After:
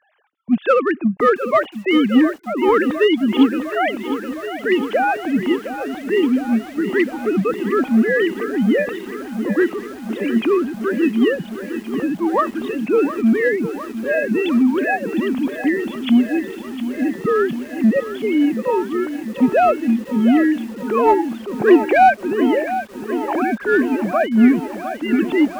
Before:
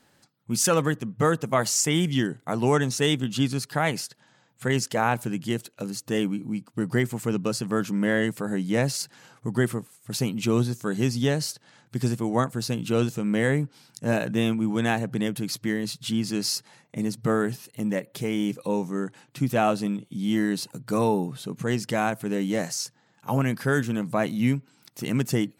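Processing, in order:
three sine waves on the formant tracks
0:21.59–0:22.15: hollow resonant body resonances 370/770/1,600/2,300 Hz, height 13 dB, ringing for 30 ms
in parallel at −7 dB: hard clipping −19 dBFS, distortion −12 dB
on the sum: feedback echo at a low word length 709 ms, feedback 80%, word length 7 bits, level −11.5 dB
level +4.5 dB

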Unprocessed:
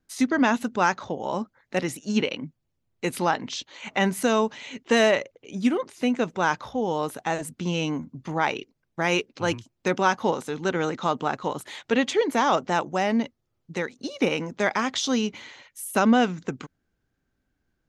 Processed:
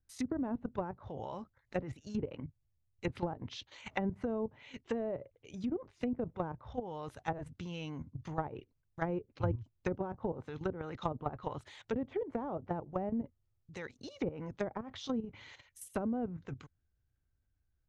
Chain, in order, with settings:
output level in coarse steps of 12 dB
treble cut that deepens with the level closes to 460 Hz, closed at −23 dBFS
low shelf with overshoot 140 Hz +12.5 dB, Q 1.5
level −5.5 dB

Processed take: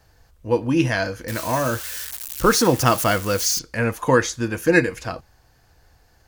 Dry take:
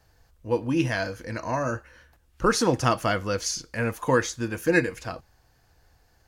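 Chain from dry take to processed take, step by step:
0:01.28–0:03.59: spike at every zero crossing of −25 dBFS
level +5 dB

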